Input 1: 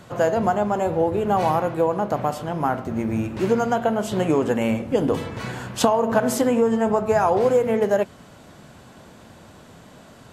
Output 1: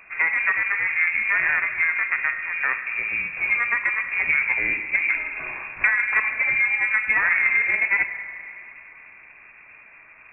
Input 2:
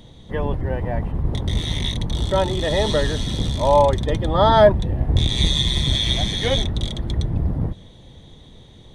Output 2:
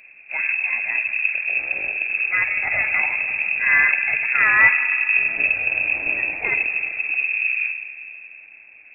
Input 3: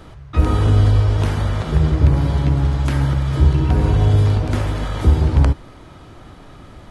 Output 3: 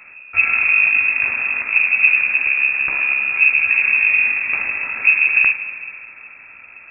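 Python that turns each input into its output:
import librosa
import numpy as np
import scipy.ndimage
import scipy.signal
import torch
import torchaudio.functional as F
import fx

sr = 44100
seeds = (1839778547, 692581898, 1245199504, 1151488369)

y = fx.rev_spring(x, sr, rt60_s=2.7, pass_ms=(47, 51), chirp_ms=35, drr_db=8.0)
y = fx.cheby_harmonics(y, sr, harmonics=(6,), levels_db=(-21,), full_scale_db=-0.5)
y = fx.freq_invert(y, sr, carrier_hz=2600)
y = y * librosa.db_to_amplitude(-2.5)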